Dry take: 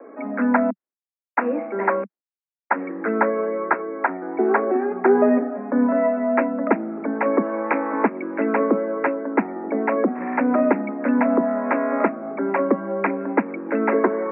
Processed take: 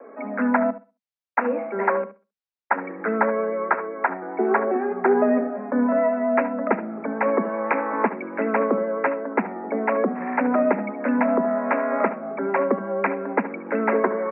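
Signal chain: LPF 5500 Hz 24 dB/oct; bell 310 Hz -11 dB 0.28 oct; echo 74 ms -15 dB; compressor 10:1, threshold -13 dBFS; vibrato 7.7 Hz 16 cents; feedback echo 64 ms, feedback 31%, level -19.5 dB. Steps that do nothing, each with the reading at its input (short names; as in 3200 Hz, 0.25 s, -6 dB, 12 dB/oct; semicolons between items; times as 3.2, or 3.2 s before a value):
LPF 5500 Hz: input band ends at 2300 Hz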